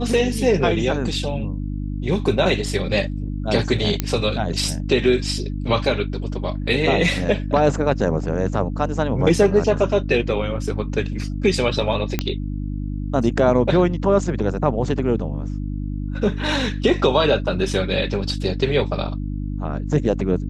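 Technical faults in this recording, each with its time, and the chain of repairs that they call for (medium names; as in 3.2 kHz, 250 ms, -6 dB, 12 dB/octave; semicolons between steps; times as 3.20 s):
hum 50 Hz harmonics 6 -26 dBFS
4.00 s: pop -5 dBFS
12.19 s: pop -6 dBFS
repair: de-click; de-hum 50 Hz, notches 6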